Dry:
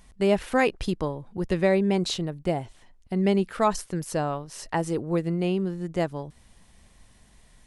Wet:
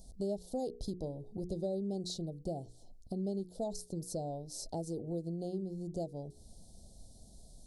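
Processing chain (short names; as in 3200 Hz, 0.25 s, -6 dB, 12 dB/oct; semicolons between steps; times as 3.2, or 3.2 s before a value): elliptic band-stop 700–4200 Hz, stop band 40 dB; notches 60/120/180/240/300/360/420/480 Hz; compressor 2.5:1, threshold -43 dBFS, peak gain reduction 16.5 dB; gain +1.5 dB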